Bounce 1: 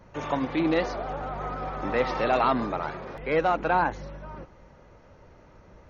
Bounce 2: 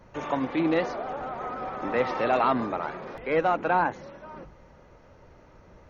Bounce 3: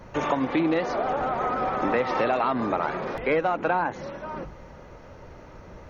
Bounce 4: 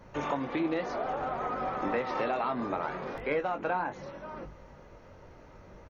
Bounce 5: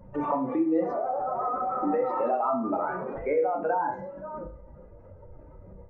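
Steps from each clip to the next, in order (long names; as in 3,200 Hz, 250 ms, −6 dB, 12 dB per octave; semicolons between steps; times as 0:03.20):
dynamic equaliser 4,700 Hz, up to −5 dB, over −51 dBFS, Q 1.3; mains-hum notches 50/100/150/200 Hz
downward compressor 12 to 1, threshold −28 dBFS, peak gain reduction 10.5 dB; level +8 dB
double-tracking delay 21 ms −8 dB; level −7.5 dB
expanding power law on the bin magnitudes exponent 2.1; on a send at −5 dB: convolution reverb RT60 0.45 s, pre-delay 31 ms; on the sum: level +3.5 dB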